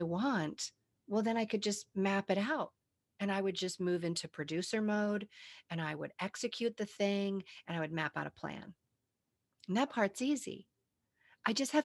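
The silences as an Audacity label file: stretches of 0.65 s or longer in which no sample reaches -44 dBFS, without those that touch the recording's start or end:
8.700000	9.640000	silence
10.600000	11.450000	silence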